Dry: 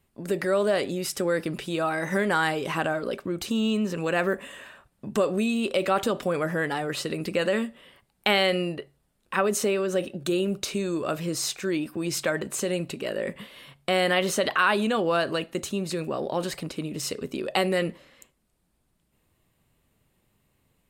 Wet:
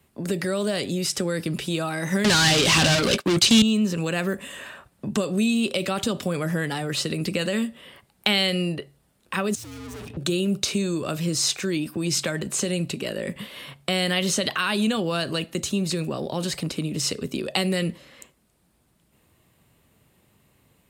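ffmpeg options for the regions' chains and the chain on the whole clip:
ffmpeg -i in.wav -filter_complex "[0:a]asettb=1/sr,asplit=3[link_01][link_02][link_03];[link_01]atrim=end=2.244[link_04];[link_02]atrim=start=2.24:end=3.62,asetpts=PTS-STARTPTS,afade=type=in:duration=0.004:curve=qsin,afade=type=out:start_time=1.376:duration=0.004:curve=qsin,agate=range=-33dB:threshold=-28dB:ratio=3:release=100:detection=peak,asplit=2[link_05][link_06];[link_06]highpass=frequency=720:poles=1,volume=36dB,asoftclip=type=tanh:threshold=-11dB[link_07];[link_05][link_07]amix=inputs=2:normalize=0,lowpass=frequency=7000:poles=1,volume=-6dB[link_08];[link_03]atrim=start=3.616[link_09];[link_04][link_08]acrossfade=duration=0.004:curve1=hsin:curve2=qsin[link_10];[link_10][link_09]acrossfade=duration=0.004:curve1=qsin:curve2=hsin,asettb=1/sr,asplit=3[link_11][link_12][link_13];[link_11]atrim=end=9.554[link_14];[link_12]atrim=start=9.55:end=10.17,asetpts=PTS-STARTPTS,afade=type=in:duration=0.004:curve=qsin,afade=type=out:start_time=0.616:duration=0.004:curve=qsin,aeval=exprs='(tanh(158*val(0)+0.45)-tanh(0.45))/158':channel_layout=same,afreqshift=-120[link_15];[link_13]atrim=start=10.166[link_16];[link_14][link_15]acrossfade=duration=0.004:curve1=hsin:curve2=qsin[link_17];[link_17][link_16]acrossfade=duration=0.004:curve1=qsin:curve2=hsin,acrossover=split=8700[link_18][link_19];[link_19]acompressor=threshold=-49dB:ratio=4:attack=1:release=60[link_20];[link_18][link_20]amix=inputs=2:normalize=0,highpass=60,acrossover=split=220|3000[link_21][link_22][link_23];[link_22]acompressor=threshold=-45dB:ratio=2[link_24];[link_21][link_24][link_23]amix=inputs=3:normalize=0,volume=8dB" out.wav

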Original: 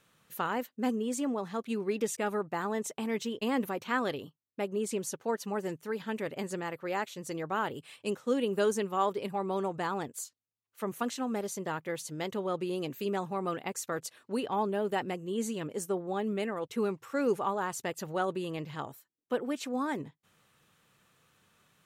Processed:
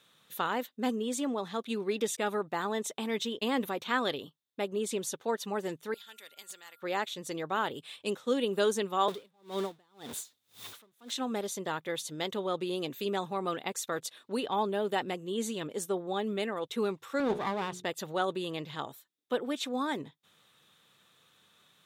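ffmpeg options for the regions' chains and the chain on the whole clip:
ffmpeg -i in.wav -filter_complex "[0:a]asettb=1/sr,asplit=3[link_01][link_02][link_03];[link_01]atrim=end=5.944[link_04];[link_02]atrim=start=5.94:end=6.82,asetpts=PTS-STARTPTS,afade=type=in:duration=0.004:curve=qsin,afade=type=out:start_time=0.876:duration=0.004:curve=qsin,aderivative,aeval=exprs='clip(val(0),-1,0.01)':channel_layout=same,aeval=exprs='val(0)+0.000562*sin(2*PI*1400*n/s)':channel_layout=same[link_05];[link_03]atrim=start=6.816[link_06];[link_04][link_05]acrossfade=duration=0.004:curve1=hsin:curve2=qsin[link_07];[link_07][link_06]acrossfade=duration=0.004:curve1=qsin:curve2=hsin,asettb=1/sr,asplit=3[link_08][link_09][link_10];[link_08]atrim=end=9.084[link_11];[link_09]atrim=start=9.08:end=11.12,asetpts=PTS-STARTPTS,afade=type=in:duration=0.004:curve=qsin,afade=type=out:start_time=2.036:duration=0.004:curve=qsin,aeval=exprs='val(0)+0.5*0.015*sgn(val(0))':channel_layout=same,acrossover=split=480|3000[link_12][link_13][link_14];[link_13]acompressor=threshold=-35dB:ratio=2:attack=3.2:release=140:knee=2.83:detection=peak[link_15];[link_12][link_15][link_14]amix=inputs=3:normalize=0,aeval=exprs='val(0)*pow(10,-37*(0.5-0.5*cos(2*PI*1.9*n/s))/20)':channel_layout=same[link_16];[link_10]atrim=start=11.116[link_17];[link_11][link_16]acrossfade=duration=0.004:curve1=hsin:curve2=qsin[link_18];[link_18][link_17]acrossfade=duration=0.004:curve1=qsin:curve2=hsin,asettb=1/sr,asplit=3[link_19][link_20][link_21];[link_19]atrim=end=17.204[link_22];[link_20]atrim=start=17.2:end=17.85,asetpts=PTS-STARTPTS,afade=type=in:duration=0.004:curve=qsin,afade=type=out:start_time=0.646:duration=0.004:curve=qsin,aemphasis=mode=reproduction:type=bsi,bandreject=frequency=60:width_type=h:width=6,bandreject=frequency=120:width_type=h:width=6,bandreject=frequency=180:width_type=h:width=6,bandreject=frequency=240:width_type=h:width=6,bandreject=frequency=300:width_type=h:width=6,bandreject=frequency=360:width_type=h:width=6,bandreject=frequency=420:width_type=h:width=6,bandreject=frequency=480:width_type=h:width=6,aeval=exprs='clip(val(0),-1,0.0106)':channel_layout=same[link_23];[link_21]atrim=start=17.846[link_24];[link_22][link_23]acrossfade=duration=0.004:curve1=hsin:curve2=qsin[link_25];[link_25][link_24]acrossfade=duration=0.004:curve1=qsin:curve2=hsin,highpass=frequency=200:poles=1,equalizer=frequency=3600:width_type=o:width=0.25:gain=13,volume=1dB" out.wav

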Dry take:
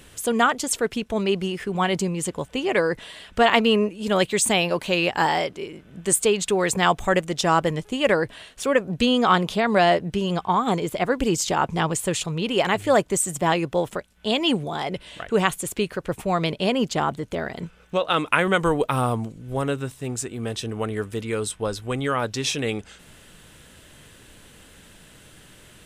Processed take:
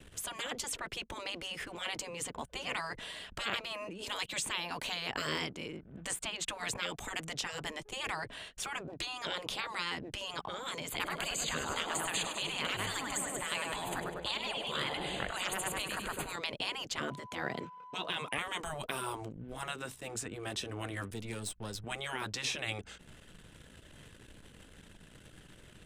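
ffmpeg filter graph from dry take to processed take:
ffmpeg -i in.wav -filter_complex "[0:a]asettb=1/sr,asplit=3[link_01][link_02][link_03];[link_01]atrim=end=10.904[link_04];[link_02]atrim=start=10.9:end=16.36,asetpts=PTS-STARTPTS,afade=type=in:duration=0.004:curve=qsin,afade=type=out:start_time=5.456:duration=0.004:curve=qsin,asuperstop=centerf=5500:order=20:qfactor=4.4,acontrast=22,aecho=1:1:100|200|300|400|500|600|700:0.282|0.166|0.0981|0.0579|0.0342|0.0201|0.0119,atrim=end_sample=240786[link_05];[link_03]atrim=start=16.356[link_06];[link_04][link_05]acrossfade=duration=0.004:curve1=hsin:curve2=qsin[link_07];[link_07][link_06]acrossfade=duration=0.004:curve1=qsin:curve2=hsin,asettb=1/sr,asplit=3[link_08][link_09][link_10];[link_08]atrim=end=16.984[link_11];[link_09]atrim=start=16.98:end=18.38,asetpts=PTS-STARTPTS,afade=type=in:duration=0.004:curve=qsin,afade=type=out:start_time=1.396:duration=0.004:curve=qsin,highpass=frequency=110:width=0.5412,highpass=frequency=110:width=1.3066,aeval=exprs='val(0)+0.00631*sin(2*PI*1000*n/s)':channel_layout=same[link_12];[link_10]atrim=start=18.376[link_13];[link_11][link_12]acrossfade=duration=0.004:curve1=hsin:curve2=qsin[link_14];[link_14][link_13]acrossfade=duration=0.004:curve1=qsin:curve2=hsin,asettb=1/sr,asplit=3[link_15][link_16][link_17];[link_15]atrim=end=21.104[link_18];[link_16]atrim=start=21.1:end=21.84,asetpts=PTS-STARTPTS,afade=type=in:duration=0.004:curve=qsin,afade=type=out:start_time=0.736:duration=0.004:curve=qsin,aeval=exprs='if(lt(val(0),0),0.447*val(0),val(0))':channel_layout=same,acrossover=split=210|3000[link_19][link_20][link_21];[link_20]acompressor=threshold=-53dB:ratio=1.5:attack=3.2:release=140:knee=2.83:detection=peak[link_22];[link_19][link_22][link_21]amix=inputs=3:normalize=0[link_23];[link_17]atrim=start=21.836[link_24];[link_18][link_23]acrossfade=duration=0.004:curve1=hsin:curve2=qsin[link_25];[link_25][link_24]acrossfade=duration=0.004:curve1=qsin:curve2=hsin,acrossover=split=200|3300[link_26][link_27][link_28];[link_26]acompressor=threshold=-37dB:ratio=4[link_29];[link_27]acompressor=threshold=-20dB:ratio=4[link_30];[link_28]acompressor=threshold=-35dB:ratio=4[link_31];[link_29][link_30][link_31]amix=inputs=3:normalize=0,anlmdn=0.01,afftfilt=real='re*lt(hypot(re,im),0.141)':imag='im*lt(hypot(re,im),0.141)':win_size=1024:overlap=0.75,volume=-3.5dB" out.wav

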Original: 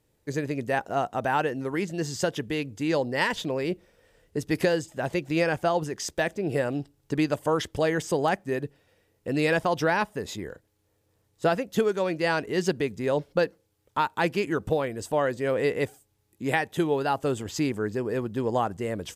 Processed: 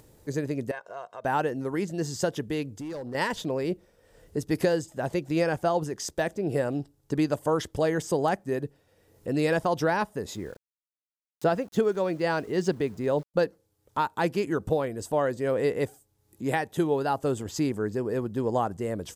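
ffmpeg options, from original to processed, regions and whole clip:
ffmpeg -i in.wav -filter_complex "[0:a]asettb=1/sr,asplit=3[link_01][link_02][link_03];[link_01]atrim=end=0.714[link_04];[link_02]atrim=start=0.71:end=1.25,asetpts=PTS-STARTPTS,afade=type=in:duration=0.004:curve=qsin,afade=type=out:start_time=0.536:duration=0.004:curve=qsin,acompressor=threshold=-35dB:ratio=2:attack=3.2:release=140:knee=1:detection=peak,bandpass=frequency=1800:width_type=q:width=0.62,aecho=1:1:1.9:0.7,atrim=end_sample=23814[link_05];[link_03]atrim=start=1.246[link_06];[link_04][link_05]acrossfade=duration=0.004:curve1=hsin:curve2=qsin[link_07];[link_07][link_06]acrossfade=duration=0.004:curve1=qsin:curve2=hsin,asettb=1/sr,asplit=3[link_08][link_09][link_10];[link_08]atrim=end=2.724[link_11];[link_09]atrim=start=2.72:end=3.15,asetpts=PTS-STARTPTS,afade=type=in:duration=0.004:curve=qsin,afade=type=out:start_time=0.426:duration=0.004:curve=qsin,acompressor=threshold=-34dB:ratio=2.5:attack=3.2:release=140:knee=1:detection=peak,asoftclip=type=hard:threshold=-31.5dB[link_12];[link_10]atrim=start=3.146[link_13];[link_11][link_12]acrossfade=duration=0.004:curve1=hsin:curve2=qsin[link_14];[link_14][link_13]acrossfade=duration=0.004:curve1=qsin:curve2=hsin,asettb=1/sr,asplit=3[link_15][link_16][link_17];[link_15]atrim=end=10.354[link_18];[link_16]atrim=start=10.35:end=13.34,asetpts=PTS-STARTPTS,afade=type=in:duration=0.004:curve=qsin,afade=type=out:start_time=2.986:duration=0.004:curve=qsin,highshelf=frequency=8900:gain=-10.5,aeval=exprs='val(0)*gte(abs(val(0)),0.00398)':channel_layout=same[link_19];[link_17]atrim=start=13.336[link_20];[link_18][link_19]acrossfade=duration=0.004:curve1=hsin:curve2=qsin[link_21];[link_21][link_20]acrossfade=duration=0.004:curve1=qsin:curve2=hsin,equalizer=frequency=2500:width=0.97:gain=-6.5,acompressor=mode=upward:threshold=-43dB:ratio=2.5" out.wav

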